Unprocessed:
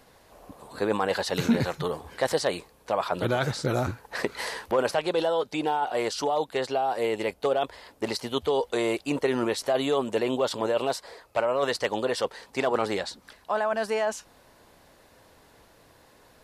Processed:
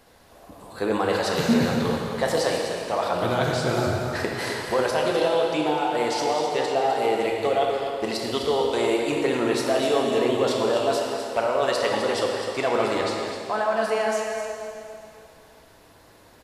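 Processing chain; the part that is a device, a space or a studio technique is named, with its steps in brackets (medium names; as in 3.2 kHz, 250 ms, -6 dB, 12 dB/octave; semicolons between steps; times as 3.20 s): cave (delay 254 ms -9 dB; reverberation RT60 2.6 s, pre-delay 3 ms, DRR -0.5 dB)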